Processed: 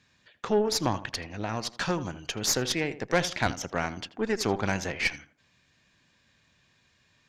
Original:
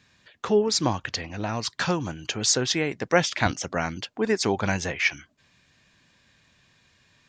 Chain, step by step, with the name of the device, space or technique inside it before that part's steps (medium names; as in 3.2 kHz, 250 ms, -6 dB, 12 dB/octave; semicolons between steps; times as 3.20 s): rockabilly slapback (valve stage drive 15 dB, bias 0.75; tape echo 81 ms, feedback 34%, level -12 dB, low-pass 1.5 kHz)